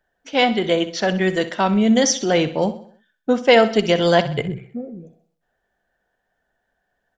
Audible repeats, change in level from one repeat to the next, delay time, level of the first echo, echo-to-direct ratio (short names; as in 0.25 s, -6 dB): 4, -6.5 dB, 64 ms, -14.0 dB, -13.0 dB